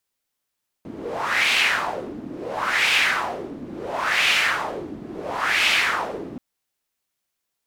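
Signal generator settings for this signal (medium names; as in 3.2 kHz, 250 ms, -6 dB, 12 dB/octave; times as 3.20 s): wind-like swept noise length 5.53 s, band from 260 Hz, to 2.6 kHz, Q 3, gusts 4, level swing 17 dB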